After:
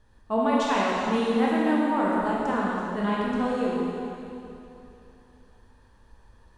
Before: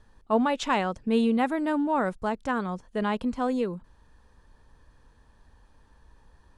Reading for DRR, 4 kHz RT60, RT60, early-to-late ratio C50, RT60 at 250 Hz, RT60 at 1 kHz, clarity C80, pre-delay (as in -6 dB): -6.0 dB, 2.7 s, 2.9 s, -3.0 dB, 3.1 s, 2.9 s, -1.5 dB, 7 ms